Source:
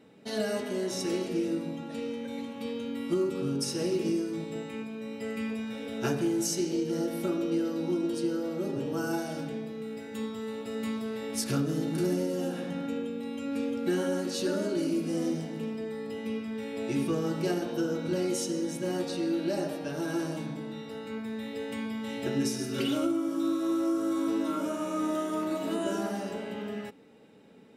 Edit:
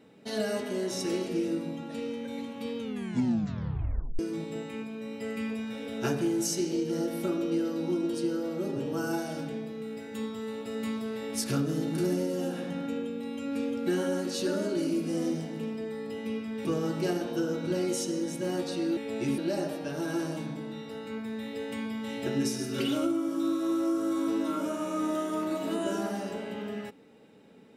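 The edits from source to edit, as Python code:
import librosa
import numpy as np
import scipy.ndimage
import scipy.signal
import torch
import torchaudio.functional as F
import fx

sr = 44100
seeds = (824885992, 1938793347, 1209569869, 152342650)

y = fx.edit(x, sr, fx.tape_stop(start_s=2.79, length_s=1.4),
    fx.move(start_s=16.65, length_s=0.41, to_s=19.38), tone=tone)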